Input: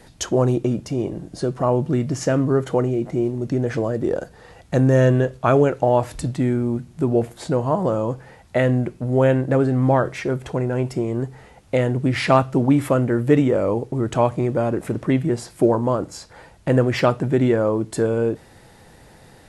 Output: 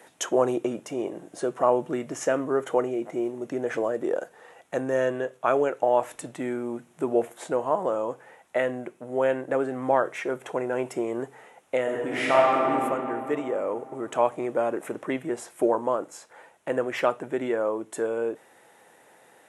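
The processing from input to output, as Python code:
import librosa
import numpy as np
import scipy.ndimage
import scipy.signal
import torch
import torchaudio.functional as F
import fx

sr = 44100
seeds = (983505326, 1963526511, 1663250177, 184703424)

y = fx.reverb_throw(x, sr, start_s=11.82, length_s=0.88, rt60_s=2.9, drr_db=-5.5)
y = scipy.signal.sosfilt(scipy.signal.butter(2, 440.0, 'highpass', fs=sr, output='sos'), y)
y = fx.peak_eq(y, sr, hz=4600.0, db=-13.5, octaves=0.53)
y = fx.rider(y, sr, range_db=10, speed_s=2.0)
y = y * 10.0 ** (-4.5 / 20.0)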